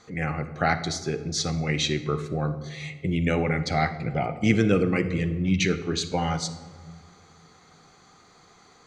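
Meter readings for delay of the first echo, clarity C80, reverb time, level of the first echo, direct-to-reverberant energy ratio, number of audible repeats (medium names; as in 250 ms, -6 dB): no echo, 13.5 dB, 1.4 s, no echo, 11.0 dB, no echo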